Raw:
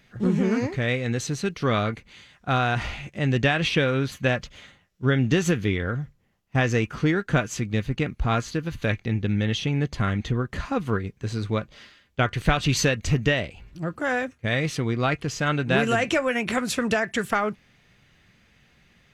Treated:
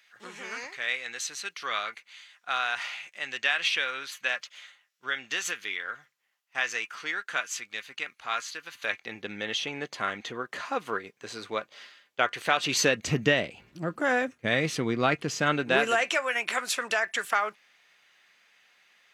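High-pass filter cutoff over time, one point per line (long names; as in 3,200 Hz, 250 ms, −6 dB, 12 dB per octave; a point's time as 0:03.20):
0:08.59 1,300 Hz
0:09.26 550 Hz
0:12.51 550 Hz
0:13.10 200 Hz
0:15.46 200 Hz
0:16.12 800 Hz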